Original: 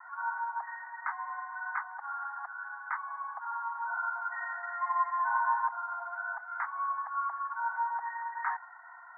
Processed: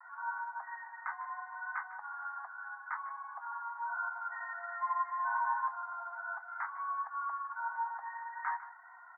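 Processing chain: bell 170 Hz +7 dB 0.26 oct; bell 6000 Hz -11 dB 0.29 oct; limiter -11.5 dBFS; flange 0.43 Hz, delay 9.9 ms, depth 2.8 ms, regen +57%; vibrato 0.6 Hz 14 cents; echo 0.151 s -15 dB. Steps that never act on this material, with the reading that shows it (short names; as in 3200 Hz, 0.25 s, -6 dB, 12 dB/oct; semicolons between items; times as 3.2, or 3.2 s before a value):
bell 170 Hz: input band starts at 680 Hz; bell 6000 Hz: input band ends at 1900 Hz; limiter -11.5 dBFS: input peak -18.0 dBFS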